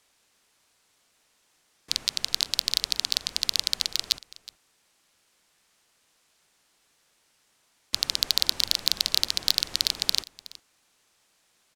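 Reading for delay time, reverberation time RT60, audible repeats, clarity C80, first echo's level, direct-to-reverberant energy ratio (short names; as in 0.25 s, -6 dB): 0.369 s, none, 1, none, -19.5 dB, none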